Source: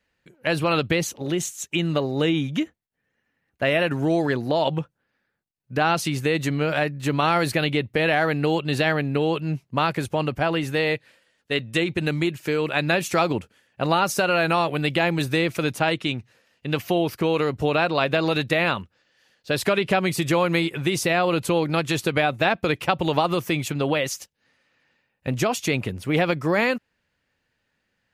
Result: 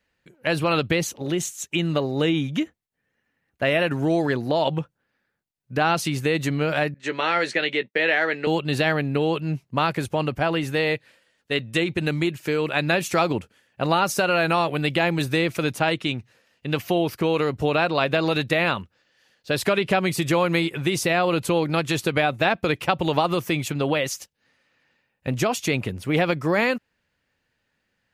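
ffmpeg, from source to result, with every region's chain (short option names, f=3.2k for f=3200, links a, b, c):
-filter_complex "[0:a]asettb=1/sr,asplit=3[a][b][c];[a]atrim=end=6.944[d];[b]atrim=start=6.94:end=8.47,asetpts=PTS-STARTPTS,afade=t=in:d=0.004:c=qsin,afade=t=out:st=1.526:d=0.004:c=qsin,agate=range=-33dB:threshold=-30dB:ratio=3:release=100:detection=peak,highpass=f=230:w=0.5412,highpass=f=230:w=1.3066,equalizer=f=280:t=q:w=4:g=-8,equalizer=f=730:t=q:w=4:g=-7,equalizer=f=1.1k:t=q:w=4:g=-6,equalizer=f=1.9k:t=q:w=4:g=6,equalizer=f=4.7k:t=q:w=4:g=-4,lowpass=f=7.1k:w=0.5412,lowpass=f=7.1k:w=1.3066,asplit=2[e][f];[f]adelay=16,volume=-11dB[g];[e][g]amix=inputs=2:normalize=0,atrim=end_sample=67473[h];[c]atrim=start=8.466[i];[d][h]acrossfade=d=0.004:c1=hsin:c2=qsin[j];[j][i]acrossfade=d=0.004:c1=qsin:c2=hsin"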